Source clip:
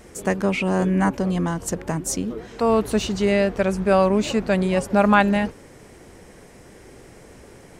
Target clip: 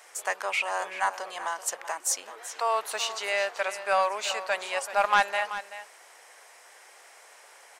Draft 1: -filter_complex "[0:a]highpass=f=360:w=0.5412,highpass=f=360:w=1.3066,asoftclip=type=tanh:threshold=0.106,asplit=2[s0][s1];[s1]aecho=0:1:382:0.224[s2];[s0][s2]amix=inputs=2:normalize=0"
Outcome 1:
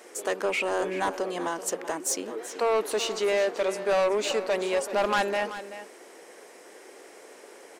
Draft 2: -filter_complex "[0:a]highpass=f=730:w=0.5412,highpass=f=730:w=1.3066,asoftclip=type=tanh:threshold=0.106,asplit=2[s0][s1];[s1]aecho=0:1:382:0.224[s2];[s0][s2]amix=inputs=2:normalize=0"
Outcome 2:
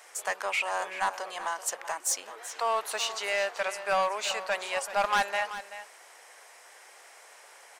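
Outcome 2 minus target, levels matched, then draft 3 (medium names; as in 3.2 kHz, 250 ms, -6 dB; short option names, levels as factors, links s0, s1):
saturation: distortion +6 dB
-filter_complex "[0:a]highpass=f=730:w=0.5412,highpass=f=730:w=1.3066,asoftclip=type=tanh:threshold=0.237,asplit=2[s0][s1];[s1]aecho=0:1:382:0.224[s2];[s0][s2]amix=inputs=2:normalize=0"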